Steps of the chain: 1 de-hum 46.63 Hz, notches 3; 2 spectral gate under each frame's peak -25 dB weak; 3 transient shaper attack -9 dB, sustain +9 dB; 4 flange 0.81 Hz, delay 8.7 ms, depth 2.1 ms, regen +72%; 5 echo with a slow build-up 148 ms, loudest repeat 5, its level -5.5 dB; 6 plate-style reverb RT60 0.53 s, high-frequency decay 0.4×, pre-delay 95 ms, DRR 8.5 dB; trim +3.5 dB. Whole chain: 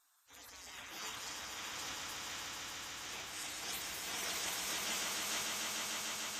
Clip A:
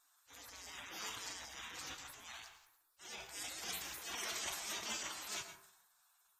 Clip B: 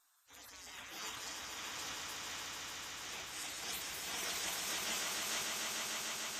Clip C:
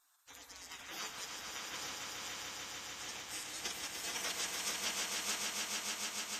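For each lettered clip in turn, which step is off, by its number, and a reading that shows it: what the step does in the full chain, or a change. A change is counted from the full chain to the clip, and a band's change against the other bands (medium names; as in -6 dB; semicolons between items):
5, crest factor change +3.5 dB; 6, momentary loudness spread change +2 LU; 3, crest factor change +4.0 dB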